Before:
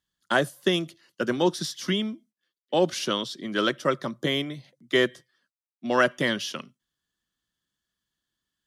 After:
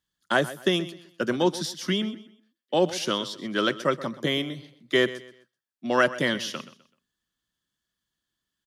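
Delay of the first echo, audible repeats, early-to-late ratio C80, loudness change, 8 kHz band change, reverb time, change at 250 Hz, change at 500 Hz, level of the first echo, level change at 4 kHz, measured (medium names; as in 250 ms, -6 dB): 127 ms, 2, no reverb, 0.0 dB, 0.0 dB, no reverb, 0.0 dB, 0.0 dB, -16.0 dB, 0.0 dB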